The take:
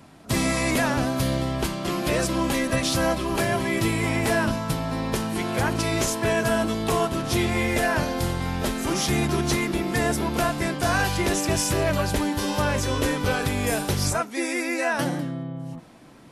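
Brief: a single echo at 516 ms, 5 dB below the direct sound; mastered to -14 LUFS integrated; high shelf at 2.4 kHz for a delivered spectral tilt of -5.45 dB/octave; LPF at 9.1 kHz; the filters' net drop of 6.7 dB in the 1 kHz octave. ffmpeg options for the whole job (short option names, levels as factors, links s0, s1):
-af "lowpass=9100,equalizer=f=1000:t=o:g=-8.5,highshelf=f=2400:g=-5.5,aecho=1:1:516:0.562,volume=3.76"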